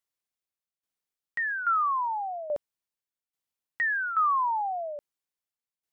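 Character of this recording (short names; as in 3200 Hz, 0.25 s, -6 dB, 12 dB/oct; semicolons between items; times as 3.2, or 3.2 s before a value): tremolo saw down 1.2 Hz, depth 75%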